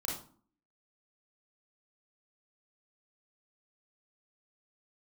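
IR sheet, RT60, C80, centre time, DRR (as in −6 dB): 0.45 s, 9.0 dB, 41 ms, −4.0 dB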